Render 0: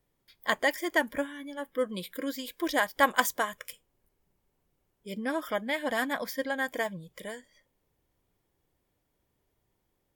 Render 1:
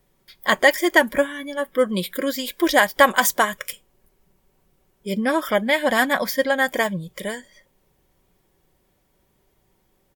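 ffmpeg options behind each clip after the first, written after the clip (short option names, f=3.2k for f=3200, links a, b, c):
-af "aecho=1:1:5.3:0.35,alimiter=level_in=12dB:limit=-1dB:release=50:level=0:latency=1,volume=-1dB"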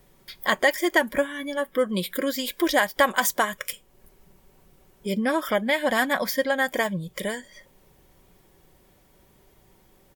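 -af "acompressor=threshold=-46dB:ratio=1.5,volume=7dB"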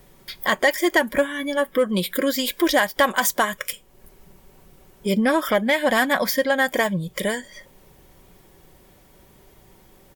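-filter_complex "[0:a]asplit=2[a][b];[b]alimiter=limit=-16dB:level=0:latency=1:release=477,volume=0dB[c];[a][c]amix=inputs=2:normalize=0,asoftclip=type=tanh:threshold=-7dB"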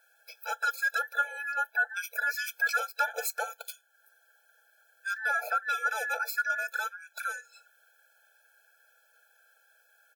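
-af "afftfilt=real='real(if(between(b,1,1012),(2*floor((b-1)/92)+1)*92-b,b),0)':imag='imag(if(between(b,1,1012),(2*floor((b-1)/92)+1)*92-b,b),0)*if(between(b,1,1012),-1,1)':win_size=2048:overlap=0.75,equalizer=f=130:t=o:w=1.8:g=7,afftfilt=real='re*eq(mod(floor(b*sr/1024/440),2),1)':imag='im*eq(mod(floor(b*sr/1024/440),2),1)':win_size=1024:overlap=0.75,volume=-8dB"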